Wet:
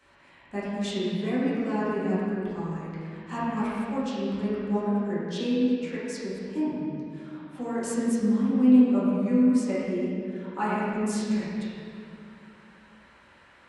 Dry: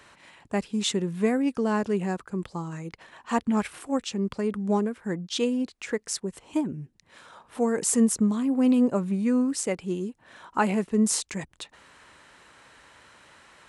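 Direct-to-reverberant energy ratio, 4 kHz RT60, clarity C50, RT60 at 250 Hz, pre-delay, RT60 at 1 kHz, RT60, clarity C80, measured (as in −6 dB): −11.5 dB, 1.7 s, −3.5 dB, 3.0 s, 4 ms, 2.1 s, 2.3 s, −1.5 dB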